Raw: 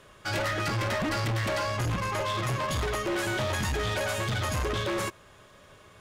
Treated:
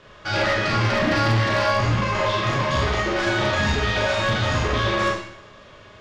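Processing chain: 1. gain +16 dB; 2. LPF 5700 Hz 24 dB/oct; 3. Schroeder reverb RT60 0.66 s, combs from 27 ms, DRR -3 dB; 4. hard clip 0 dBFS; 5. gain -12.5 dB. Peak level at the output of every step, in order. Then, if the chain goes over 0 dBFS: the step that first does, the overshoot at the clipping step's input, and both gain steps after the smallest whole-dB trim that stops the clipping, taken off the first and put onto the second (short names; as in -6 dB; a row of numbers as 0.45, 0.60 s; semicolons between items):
-8.5, -7.5, +4.5, 0.0, -12.5 dBFS; step 3, 4.5 dB; step 1 +11 dB, step 5 -7.5 dB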